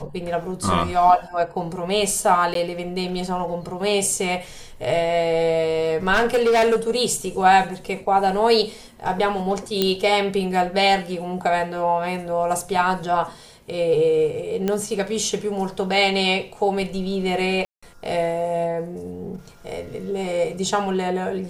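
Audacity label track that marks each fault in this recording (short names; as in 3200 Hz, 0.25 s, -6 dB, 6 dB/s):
2.540000	2.550000	gap
6.130000	6.910000	clipped -14 dBFS
9.820000	9.820000	pop -5 dBFS
14.680000	14.680000	pop -10 dBFS
17.650000	17.820000	gap 0.175 s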